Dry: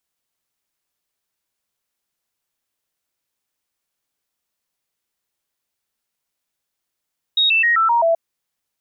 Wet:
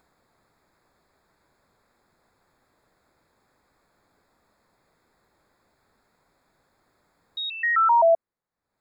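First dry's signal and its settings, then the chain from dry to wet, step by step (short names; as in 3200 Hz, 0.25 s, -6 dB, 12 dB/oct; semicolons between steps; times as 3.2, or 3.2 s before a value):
stepped sine 3760 Hz down, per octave 2, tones 6, 0.13 s, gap 0.00 s -12.5 dBFS
upward compressor, threshold -37 dBFS; running mean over 15 samples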